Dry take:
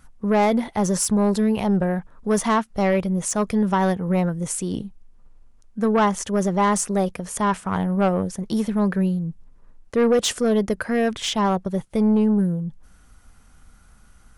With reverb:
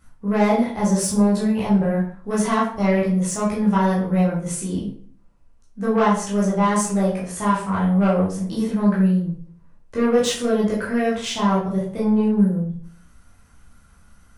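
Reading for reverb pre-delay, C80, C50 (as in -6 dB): 11 ms, 9.0 dB, 4.5 dB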